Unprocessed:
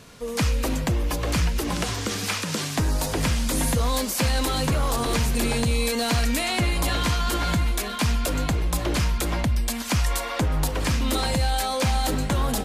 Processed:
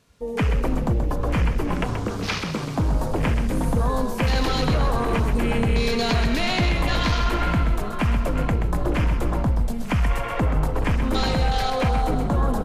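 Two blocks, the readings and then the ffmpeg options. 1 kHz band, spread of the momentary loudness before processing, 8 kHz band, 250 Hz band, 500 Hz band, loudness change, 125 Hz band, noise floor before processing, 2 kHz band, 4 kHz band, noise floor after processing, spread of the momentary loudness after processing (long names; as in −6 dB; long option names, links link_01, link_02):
+2.0 dB, 3 LU, −11.5 dB, +2.5 dB, +2.5 dB, +1.0 dB, +2.0 dB, −30 dBFS, +0.5 dB, −2.5 dB, −29 dBFS, 4 LU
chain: -filter_complex "[0:a]afwtdn=0.0282,asplit=8[link_01][link_02][link_03][link_04][link_05][link_06][link_07][link_08];[link_02]adelay=129,afreqshift=-34,volume=-7dB[link_09];[link_03]adelay=258,afreqshift=-68,volume=-11.7dB[link_10];[link_04]adelay=387,afreqshift=-102,volume=-16.5dB[link_11];[link_05]adelay=516,afreqshift=-136,volume=-21.2dB[link_12];[link_06]adelay=645,afreqshift=-170,volume=-25.9dB[link_13];[link_07]adelay=774,afreqshift=-204,volume=-30.7dB[link_14];[link_08]adelay=903,afreqshift=-238,volume=-35.4dB[link_15];[link_01][link_09][link_10][link_11][link_12][link_13][link_14][link_15]amix=inputs=8:normalize=0,volume=1.5dB"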